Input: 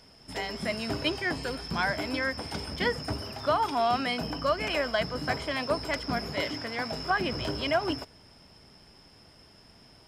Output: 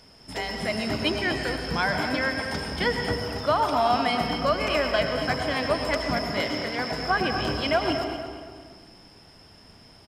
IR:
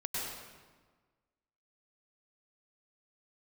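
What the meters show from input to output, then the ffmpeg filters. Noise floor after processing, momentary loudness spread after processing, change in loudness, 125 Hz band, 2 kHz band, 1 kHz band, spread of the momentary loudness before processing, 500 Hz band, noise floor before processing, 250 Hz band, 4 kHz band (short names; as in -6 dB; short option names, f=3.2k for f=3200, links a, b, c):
-52 dBFS, 7 LU, +4.0 dB, +4.5 dB, +4.0 dB, +4.5 dB, 7 LU, +4.5 dB, -56 dBFS, +4.5 dB, +4.0 dB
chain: -filter_complex "[0:a]asplit=2[a][b];[b]adelay=236,lowpass=f=3.9k:p=1,volume=-9dB,asplit=2[c][d];[d]adelay=236,lowpass=f=3.9k:p=1,volume=0.38,asplit=2[e][f];[f]adelay=236,lowpass=f=3.9k:p=1,volume=0.38,asplit=2[g][h];[h]adelay=236,lowpass=f=3.9k:p=1,volume=0.38[i];[a][c][e][g][i]amix=inputs=5:normalize=0,asplit=2[j][k];[1:a]atrim=start_sample=2205[l];[k][l]afir=irnorm=-1:irlink=0,volume=-6dB[m];[j][m]amix=inputs=2:normalize=0"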